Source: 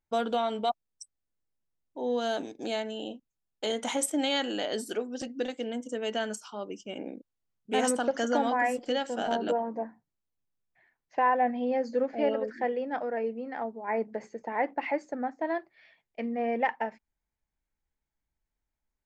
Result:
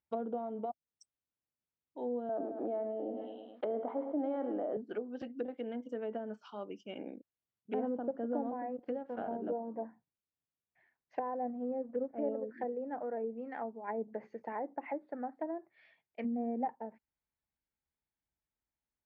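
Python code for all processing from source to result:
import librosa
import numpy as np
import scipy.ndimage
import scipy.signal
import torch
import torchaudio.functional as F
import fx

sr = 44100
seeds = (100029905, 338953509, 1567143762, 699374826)

y = fx.chain(x, sr, fx.cabinet(low_hz=270.0, low_slope=12, high_hz=3300.0, hz=(670.0, 1200.0, 2700.0), db=(6, 8, -8)),
    fx.echo_feedback(ms=107, feedback_pct=42, wet_db=-11.5),
    fx.env_flatten(amount_pct=50), at=(2.29, 4.77))
y = fx.chain(y, sr, fx.law_mismatch(coded='A'),
    fx.notch(hz=3000.0, q=20.0), at=(8.4, 9.42))
y = fx.chain(y, sr, fx.law_mismatch(coded='A'),
    fx.brickwall_lowpass(high_hz=3400.0), at=(11.23, 12.18))
y = fx.chain(y, sr, fx.low_shelf(hz=460.0, db=-2.5),
    fx.resample_linear(factor=4), at=(14.57, 15.38))
y = fx.chain(y, sr, fx.low_shelf(hz=300.0, db=-10.0),
    fx.small_body(hz=(250.0, 770.0), ring_ms=85, db=14), at=(16.24, 16.68))
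y = scipy.signal.sosfilt(scipy.signal.butter(2, 3700.0, 'lowpass', fs=sr, output='sos'), y)
y = fx.env_lowpass_down(y, sr, base_hz=540.0, full_db=-26.5)
y = scipy.signal.sosfilt(scipy.signal.butter(2, 66.0, 'highpass', fs=sr, output='sos'), y)
y = y * 10.0 ** (-5.5 / 20.0)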